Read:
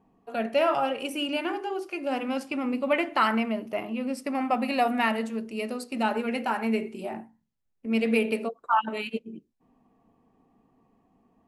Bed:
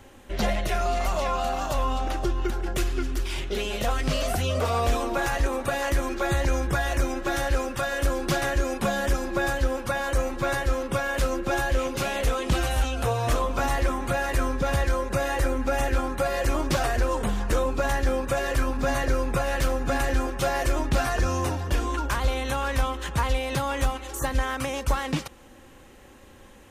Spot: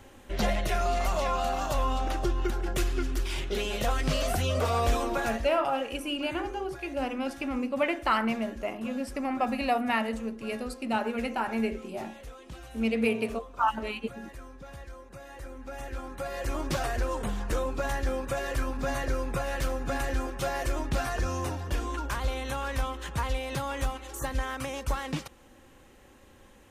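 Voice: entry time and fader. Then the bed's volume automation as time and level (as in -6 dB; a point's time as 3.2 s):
4.90 s, -2.5 dB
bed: 5.13 s -2 dB
5.7 s -20.5 dB
15.21 s -20.5 dB
16.67 s -5.5 dB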